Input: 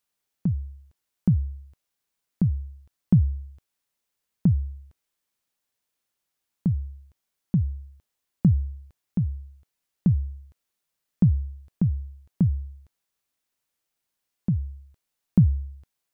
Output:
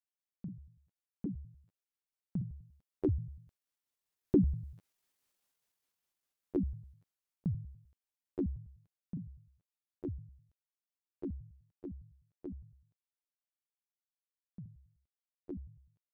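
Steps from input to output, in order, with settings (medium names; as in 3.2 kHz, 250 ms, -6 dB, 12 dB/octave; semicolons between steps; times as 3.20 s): pitch shift switched off and on +11 st, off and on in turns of 99 ms; Doppler pass-by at 5.22 s, 9 m/s, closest 4.5 m; trim +1 dB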